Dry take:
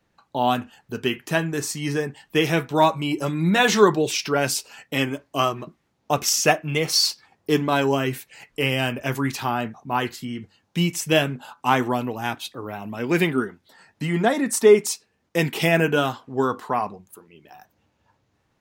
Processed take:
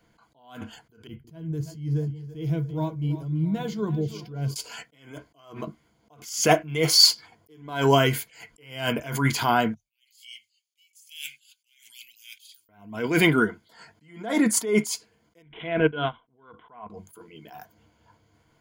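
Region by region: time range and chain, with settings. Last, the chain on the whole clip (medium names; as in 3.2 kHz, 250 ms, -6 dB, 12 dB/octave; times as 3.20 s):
1.07–4.56 s: FFT filter 130 Hz 0 dB, 220 Hz -12 dB, 1.8 kHz -29 dB, 4.7 kHz -22 dB, 8.3 kHz -29 dB, 14 kHz -21 dB + two-band feedback delay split 390 Hz, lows 171 ms, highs 333 ms, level -14.5 dB
9.74–12.69 s: elliptic high-pass 2.4 kHz, stop band 50 dB + treble shelf 4.6 kHz +9.5 dB + three bands expanded up and down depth 70%
15.42–16.90 s: transient shaper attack -1 dB, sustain -9 dB + careless resampling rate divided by 6×, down none, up filtered + upward expansion, over -36 dBFS
whole clip: rippled EQ curve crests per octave 1.8, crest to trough 10 dB; loudness maximiser +6.5 dB; attacks held to a fixed rise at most 110 dB/s; trim -2.5 dB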